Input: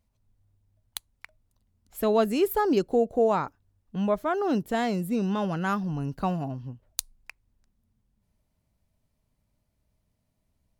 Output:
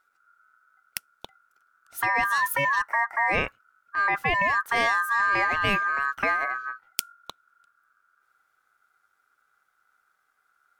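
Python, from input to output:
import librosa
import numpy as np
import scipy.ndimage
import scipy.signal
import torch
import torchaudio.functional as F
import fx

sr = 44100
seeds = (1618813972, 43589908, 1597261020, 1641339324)

p1 = fx.notch(x, sr, hz=1600.0, q=29.0)
p2 = fx.over_compress(p1, sr, threshold_db=-26.0, ratio=-0.5)
p3 = p1 + (p2 * 10.0 ** (2.0 / 20.0))
p4 = p3 * np.sin(2.0 * np.pi * 1400.0 * np.arange(len(p3)) / sr)
y = p4 * 10.0 ** (-1.5 / 20.0)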